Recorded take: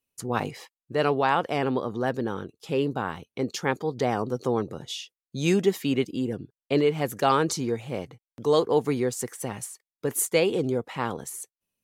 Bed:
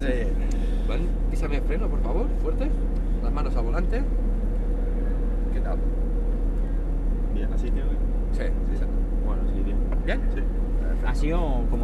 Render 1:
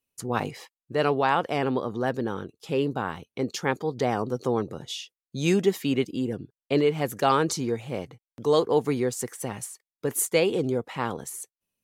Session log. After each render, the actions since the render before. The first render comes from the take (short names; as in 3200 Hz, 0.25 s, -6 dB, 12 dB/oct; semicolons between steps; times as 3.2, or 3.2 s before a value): nothing audible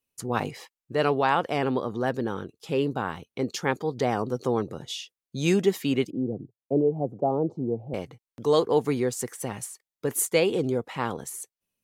6.1–7.94 elliptic band-pass 110–740 Hz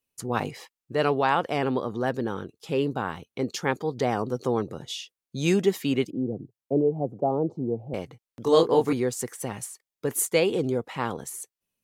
8.43–8.93 doubler 24 ms -2 dB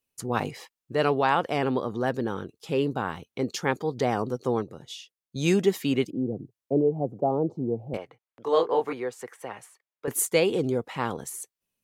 4.32–5.36 upward expander, over -35 dBFS; 7.97–10.08 three-band isolator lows -16 dB, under 420 Hz, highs -15 dB, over 3000 Hz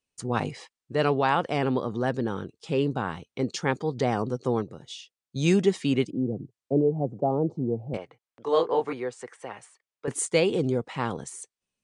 elliptic low-pass 9200 Hz, stop band 40 dB; dynamic EQ 140 Hz, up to +4 dB, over -41 dBFS, Q 0.83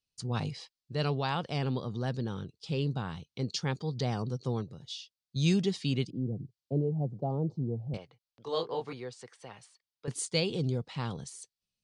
EQ curve 150 Hz 0 dB, 290 Hz -10 dB, 2000 Hz -10 dB, 4600 Hz +4 dB, 7200 Hz -7 dB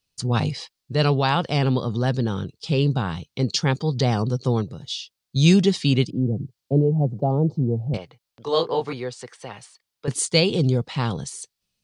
gain +11 dB